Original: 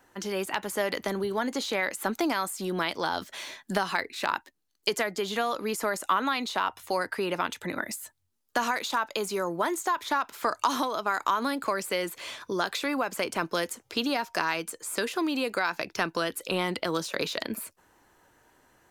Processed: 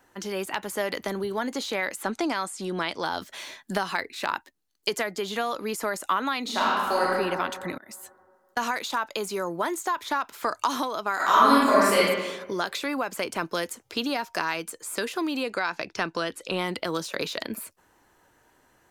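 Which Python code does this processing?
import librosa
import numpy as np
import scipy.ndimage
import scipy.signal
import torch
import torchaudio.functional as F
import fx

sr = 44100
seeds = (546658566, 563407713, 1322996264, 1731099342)

y = fx.lowpass(x, sr, hz=9900.0, slope=24, at=(2.02, 3.03))
y = fx.reverb_throw(y, sr, start_s=6.42, length_s=0.66, rt60_s=2.0, drr_db=-5.0)
y = fx.auto_swell(y, sr, attack_ms=326.0, at=(7.73, 8.57))
y = fx.reverb_throw(y, sr, start_s=11.15, length_s=0.85, rt60_s=1.2, drr_db=-9.5)
y = fx.lowpass(y, sr, hz=7900.0, slope=12, at=(15.43, 16.58))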